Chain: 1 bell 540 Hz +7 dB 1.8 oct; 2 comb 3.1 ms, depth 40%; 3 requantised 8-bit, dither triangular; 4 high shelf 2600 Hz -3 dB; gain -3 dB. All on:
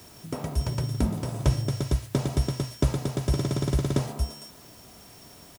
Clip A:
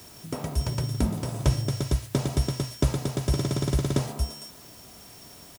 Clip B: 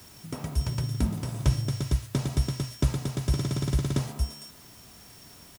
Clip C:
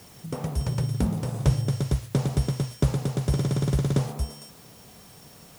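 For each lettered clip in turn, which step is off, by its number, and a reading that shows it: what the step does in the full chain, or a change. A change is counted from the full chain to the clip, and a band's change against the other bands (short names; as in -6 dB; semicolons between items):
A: 4, momentary loudness spread change -2 LU; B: 1, 500 Hz band -5.0 dB; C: 2, momentary loudness spread change -11 LU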